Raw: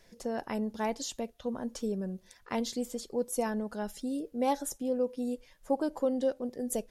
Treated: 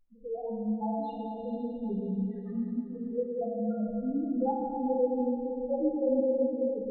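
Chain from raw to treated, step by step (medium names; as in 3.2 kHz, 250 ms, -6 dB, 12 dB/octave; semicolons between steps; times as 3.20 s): inverse Chebyshev low-pass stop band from 11 kHz, stop band 70 dB; loudest bins only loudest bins 1; plate-style reverb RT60 3.4 s, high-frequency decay 0.95×, DRR -4.5 dB; trim +4 dB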